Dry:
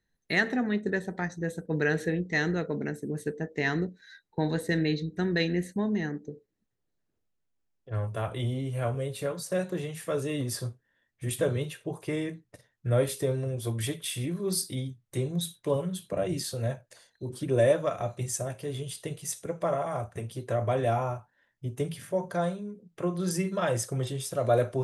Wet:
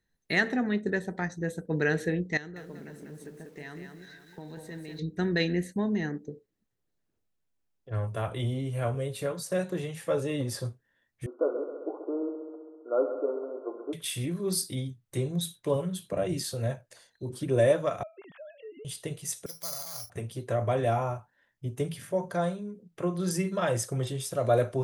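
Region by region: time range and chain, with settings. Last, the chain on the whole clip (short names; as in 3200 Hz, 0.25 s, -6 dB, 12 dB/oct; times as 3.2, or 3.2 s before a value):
2.37–4.99 compressor 2.5:1, threshold -47 dBFS + echo 0.506 s -15.5 dB + lo-fi delay 0.192 s, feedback 35%, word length 10-bit, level -5 dB
9.95–10.65 high shelf 7400 Hz -6 dB + small resonant body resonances 540/840 Hz, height 11 dB, ringing for 0.1 s
11.26–13.93 brick-wall FIR band-pass 260–1500 Hz + multi-head echo 66 ms, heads first and second, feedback 70%, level -13 dB
18.03–18.85 sine-wave speech + compressor 2.5:1, threshold -49 dBFS
19.46–20.1 passive tone stack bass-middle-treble 5-5-5 + careless resampling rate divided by 8×, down none, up zero stuff
whole clip: dry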